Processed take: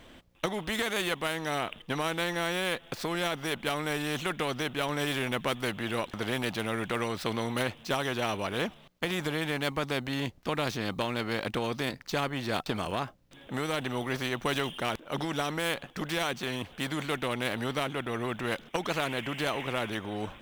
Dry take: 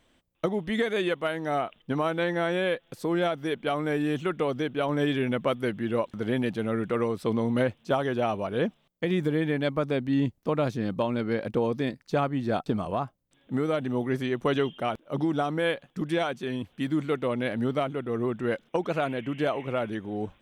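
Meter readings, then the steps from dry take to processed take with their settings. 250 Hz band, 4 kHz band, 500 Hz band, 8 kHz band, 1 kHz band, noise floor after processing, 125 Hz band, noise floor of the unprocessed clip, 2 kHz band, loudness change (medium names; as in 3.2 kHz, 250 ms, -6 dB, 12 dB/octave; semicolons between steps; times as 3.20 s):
-6.5 dB, +5.5 dB, -6.0 dB, no reading, -1.5 dB, -55 dBFS, -4.5 dB, -67 dBFS, +2.0 dB, -3.5 dB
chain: median filter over 5 samples; spectrum-flattening compressor 2:1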